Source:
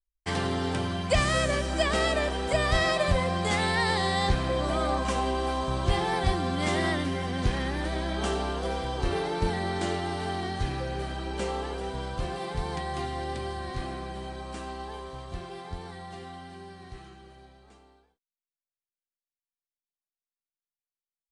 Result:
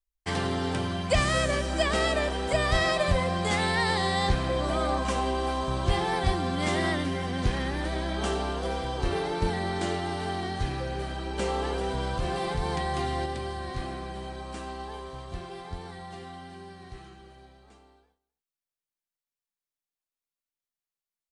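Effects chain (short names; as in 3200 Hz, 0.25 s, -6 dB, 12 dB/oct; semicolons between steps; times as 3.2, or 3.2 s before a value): outdoor echo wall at 44 m, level -24 dB; 11.38–13.26 fast leveller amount 50%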